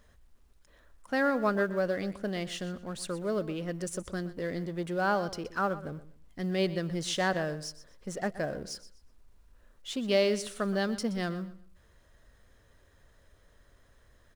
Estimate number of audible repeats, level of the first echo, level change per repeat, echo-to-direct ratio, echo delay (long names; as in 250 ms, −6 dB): 2, −15.5 dB, −12.0 dB, −15.0 dB, 123 ms